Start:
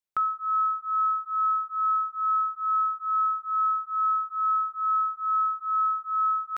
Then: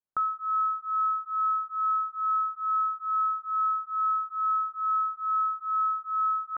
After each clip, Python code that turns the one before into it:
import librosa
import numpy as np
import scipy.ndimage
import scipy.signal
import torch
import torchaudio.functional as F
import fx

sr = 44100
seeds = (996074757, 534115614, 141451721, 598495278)

y = scipy.signal.sosfilt(scipy.signal.butter(4, 1400.0, 'lowpass', fs=sr, output='sos'), x)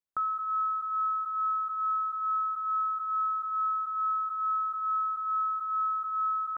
y = fx.sustainer(x, sr, db_per_s=21.0)
y = y * librosa.db_to_amplitude(-3.0)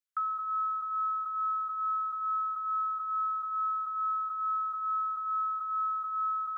y = scipy.signal.sosfilt(scipy.signal.cheby1(6, 1.0, 1200.0, 'highpass', fs=sr, output='sos'), x)
y = fx.doubler(y, sr, ms=15.0, db=-9)